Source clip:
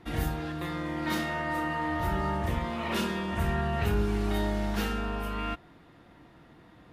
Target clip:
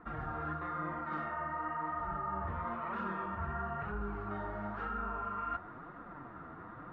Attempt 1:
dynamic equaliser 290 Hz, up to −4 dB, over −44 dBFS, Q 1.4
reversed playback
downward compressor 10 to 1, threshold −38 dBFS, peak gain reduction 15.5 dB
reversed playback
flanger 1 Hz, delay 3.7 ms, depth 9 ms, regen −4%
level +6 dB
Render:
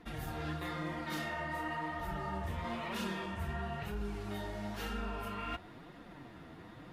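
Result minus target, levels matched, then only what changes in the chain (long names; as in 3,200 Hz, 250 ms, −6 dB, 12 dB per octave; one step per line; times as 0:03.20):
1,000 Hz band −4.0 dB
add after dynamic equaliser: low-pass with resonance 1,300 Hz, resonance Q 4.6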